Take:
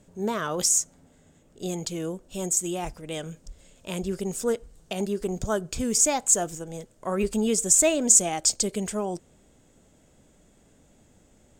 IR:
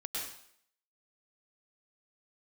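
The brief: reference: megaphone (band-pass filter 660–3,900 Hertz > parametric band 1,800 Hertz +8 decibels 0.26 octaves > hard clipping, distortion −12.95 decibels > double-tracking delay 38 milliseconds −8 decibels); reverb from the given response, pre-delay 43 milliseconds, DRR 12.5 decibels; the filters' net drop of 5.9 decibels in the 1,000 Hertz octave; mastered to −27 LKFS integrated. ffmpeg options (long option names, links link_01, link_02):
-filter_complex "[0:a]equalizer=frequency=1000:width_type=o:gain=-6.5,asplit=2[link_01][link_02];[1:a]atrim=start_sample=2205,adelay=43[link_03];[link_02][link_03]afir=irnorm=-1:irlink=0,volume=-14.5dB[link_04];[link_01][link_04]amix=inputs=2:normalize=0,highpass=660,lowpass=3900,equalizer=frequency=1800:width_type=o:width=0.26:gain=8,asoftclip=type=hard:threshold=-26.5dB,asplit=2[link_05][link_06];[link_06]adelay=38,volume=-8dB[link_07];[link_05][link_07]amix=inputs=2:normalize=0,volume=8dB"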